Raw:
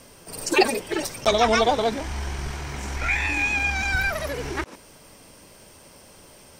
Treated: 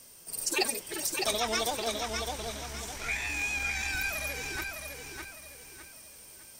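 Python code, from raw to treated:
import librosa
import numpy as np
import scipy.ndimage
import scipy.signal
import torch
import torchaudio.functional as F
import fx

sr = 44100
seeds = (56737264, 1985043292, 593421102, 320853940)

y = scipy.signal.lfilter([1.0, -0.8], [1.0], x)
y = fx.echo_feedback(y, sr, ms=607, feedback_pct=36, wet_db=-4.5)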